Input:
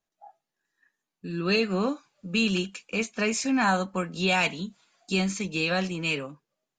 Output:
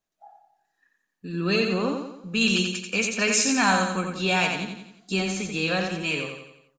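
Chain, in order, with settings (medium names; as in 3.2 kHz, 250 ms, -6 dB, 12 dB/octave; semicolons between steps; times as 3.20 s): 2.41–3.92 s: treble shelf 2.3 kHz +9 dB; feedback delay 88 ms, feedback 48%, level -5 dB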